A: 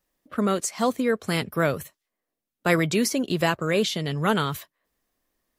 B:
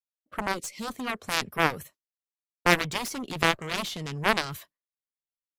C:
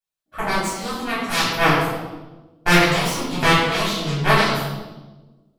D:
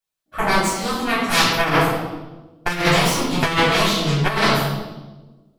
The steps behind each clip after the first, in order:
downward expander −44 dBFS; gain on a spectral selection 0:00.54–0:00.90, 590–1,900 Hz −20 dB; harmonic generator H 2 −15 dB, 3 −16 dB, 7 −17 dB, 8 −31 dB, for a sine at −5 dBFS; level +2 dB
convolution reverb RT60 1.2 s, pre-delay 3 ms, DRR −10.5 dB; level −4.5 dB
compressor whose output falls as the input rises −18 dBFS, ratio −0.5; level +2.5 dB

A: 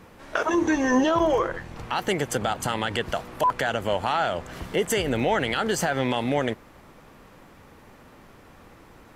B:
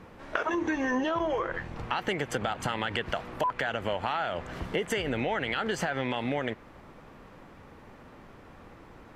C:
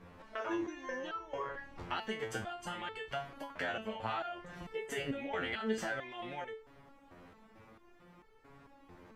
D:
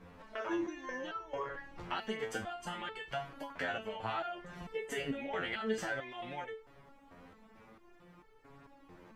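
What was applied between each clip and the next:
low-pass filter 2,900 Hz 6 dB per octave; dynamic equaliser 2,300 Hz, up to +6 dB, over −40 dBFS, Q 0.76; downward compressor, threshold −26 dBFS, peak gain reduction 9.5 dB
step-sequenced resonator 4.5 Hz 88–440 Hz; level +3 dB
flanger 0.41 Hz, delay 3.8 ms, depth 3.7 ms, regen −46%; level +4 dB

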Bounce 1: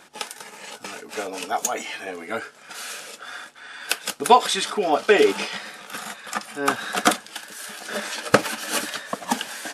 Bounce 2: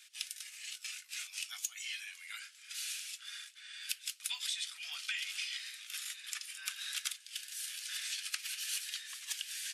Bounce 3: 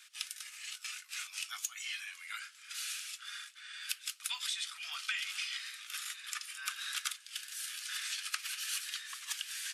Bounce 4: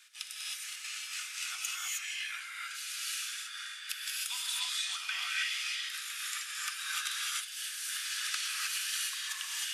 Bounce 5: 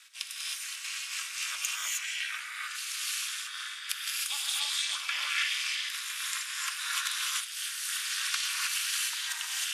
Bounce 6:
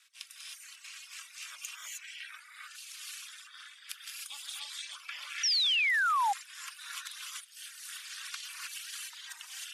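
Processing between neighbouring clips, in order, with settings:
inverse Chebyshev high-pass filter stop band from 390 Hz, stop band 80 dB; downward compressor 5 to 1, threshold −32 dBFS, peak gain reduction 13 dB; level −3.5 dB
parametric band 1,200 Hz +11 dB 0.75 octaves
reverb whose tail is shaped and stops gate 340 ms rising, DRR −5 dB; level −2 dB
ring modulation 150 Hz; level +6.5 dB
reverb reduction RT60 1.2 s; sound drawn into the spectrogram fall, 0:05.43–0:06.33, 770–5,900 Hz −19 dBFS; level −8.5 dB

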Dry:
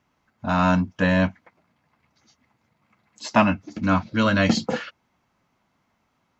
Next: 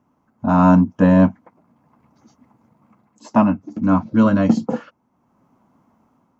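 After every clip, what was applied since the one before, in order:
octave-band graphic EQ 125/250/500/1,000/2,000/4,000 Hz +4/+11/+3/+7/−7/−10 dB
automatic gain control gain up to 5 dB
level −1 dB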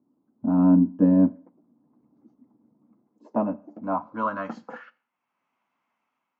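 four-comb reverb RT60 0.48 s, combs from 30 ms, DRR 19.5 dB
band-pass filter sweep 300 Hz → 2,500 Hz, 0:02.97–0:05.18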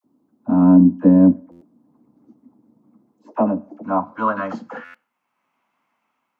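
all-pass dispersion lows, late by 48 ms, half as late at 720 Hz
buffer that repeats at 0:01.51/0:04.84, samples 512, times 8
level +6.5 dB

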